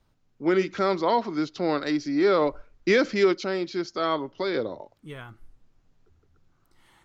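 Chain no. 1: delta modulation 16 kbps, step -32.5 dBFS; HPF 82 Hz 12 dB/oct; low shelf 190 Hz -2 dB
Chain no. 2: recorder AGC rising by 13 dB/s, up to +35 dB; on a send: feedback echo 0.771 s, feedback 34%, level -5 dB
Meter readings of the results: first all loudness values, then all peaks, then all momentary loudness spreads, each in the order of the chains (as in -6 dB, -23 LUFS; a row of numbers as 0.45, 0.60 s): -27.0, -24.5 LUFS; -13.0, -8.5 dBFS; 21, 17 LU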